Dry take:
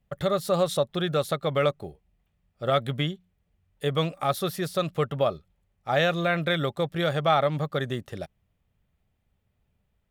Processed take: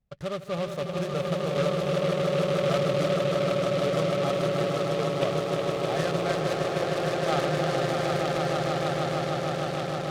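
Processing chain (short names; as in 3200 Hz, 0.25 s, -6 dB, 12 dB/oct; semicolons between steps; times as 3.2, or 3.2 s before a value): tape spacing loss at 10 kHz 22 dB; darkening echo 0.361 s, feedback 76%, low-pass 1500 Hz, level -7 dB; 6.53–7.29 level quantiser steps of 12 dB; swelling echo 0.154 s, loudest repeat 8, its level -5 dB; noise-modulated delay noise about 2300 Hz, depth 0.057 ms; gain -6 dB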